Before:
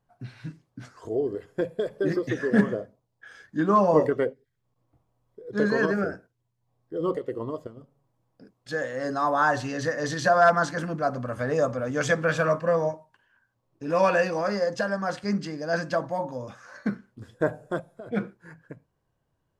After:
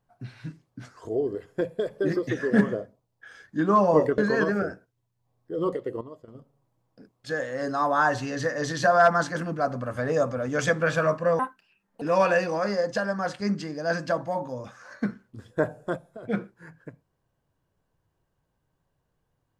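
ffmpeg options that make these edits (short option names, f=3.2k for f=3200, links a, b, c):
-filter_complex "[0:a]asplit=6[a][b][c][d][e][f];[a]atrim=end=4.182[g];[b]atrim=start=5.598:end=7.432[h];[c]atrim=start=7.428:end=7.702,asetpts=PTS-STARTPTS,volume=-10.5dB[i];[d]atrim=start=7.698:end=12.814[j];[e]atrim=start=12.81:end=13.85,asetpts=PTS-STARTPTS,asetrate=73206,aresample=44100[k];[f]atrim=start=13.846[l];[g][h]acrossfade=d=0.004:c1=hsin:c2=hsin[m];[m][i]acrossfade=d=0.004:c1=hsin:c2=hsin[n];[n][j]acrossfade=d=0.004:c1=hsin:c2=hsin[o];[o][k]acrossfade=d=0.004:c1=hsin:c2=hsin[p];[p][l]acrossfade=d=0.004:c1=hsin:c2=hsin"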